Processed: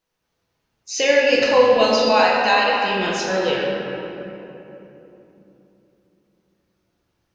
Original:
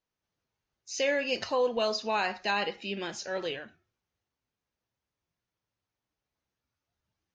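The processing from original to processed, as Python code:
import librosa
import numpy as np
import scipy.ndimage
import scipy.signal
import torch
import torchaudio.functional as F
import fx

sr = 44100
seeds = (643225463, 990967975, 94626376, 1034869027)

y = fx.highpass(x, sr, hz=530.0, slope=24, at=(2.08, 2.78))
y = fx.room_shoebox(y, sr, seeds[0], volume_m3=170.0, walls='hard', distance_m=0.68)
y = F.gain(torch.from_numpy(y), 8.5).numpy()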